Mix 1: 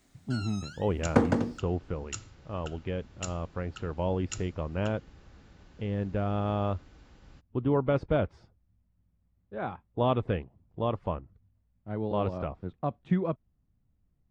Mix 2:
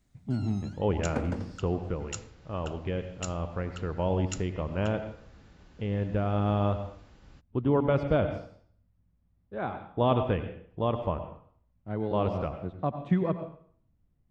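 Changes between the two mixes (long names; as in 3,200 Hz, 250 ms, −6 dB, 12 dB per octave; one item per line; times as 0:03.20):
first sound −11.0 dB
reverb: on, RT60 0.55 s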